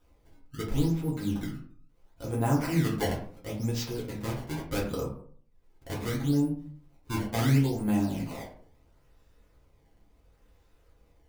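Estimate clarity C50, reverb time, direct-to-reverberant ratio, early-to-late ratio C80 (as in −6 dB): 7.0 dB, 0.50 s, −6.0 dB, 11.0 dB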